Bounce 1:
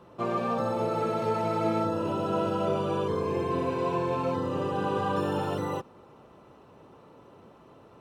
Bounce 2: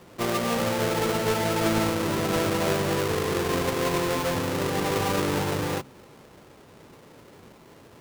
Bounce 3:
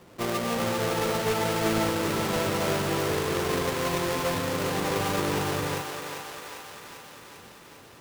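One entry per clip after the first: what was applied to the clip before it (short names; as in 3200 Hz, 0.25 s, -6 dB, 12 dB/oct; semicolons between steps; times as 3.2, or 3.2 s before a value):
half-waves squared off; de-hum 66 Hz, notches 4; gain -1 dB
thinning echo 0.397 s, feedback 69%, high-pass 450 Hz, level -5 dB; gain -2.5 dB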